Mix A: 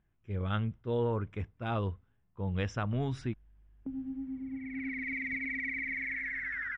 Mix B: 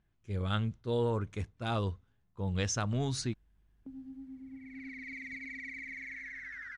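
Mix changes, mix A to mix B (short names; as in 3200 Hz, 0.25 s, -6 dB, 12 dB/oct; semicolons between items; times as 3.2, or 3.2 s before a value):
background -8.0 dB; master: remove polynomial smoothing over 25 samples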